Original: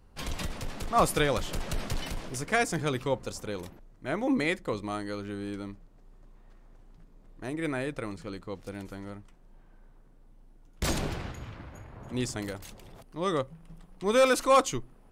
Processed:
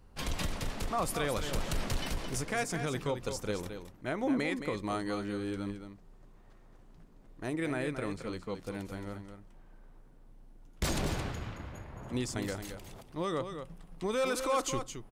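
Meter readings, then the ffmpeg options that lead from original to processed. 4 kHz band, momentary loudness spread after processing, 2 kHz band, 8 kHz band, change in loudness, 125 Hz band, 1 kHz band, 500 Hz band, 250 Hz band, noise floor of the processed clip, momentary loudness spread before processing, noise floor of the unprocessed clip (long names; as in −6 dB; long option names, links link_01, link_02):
−3.5 dB, 13 LU, −5.0 dB, −2.5 dB, −5.0 dB, −1.5 dB, −6.5 dB, −5.5 dB, −2.5 dB, −57 dBFS, 19 LU, −56 dBFS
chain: -af "alimiter=limit=-23dB:level=0:latency=1:release=141,aecho=1:1:220:0.376"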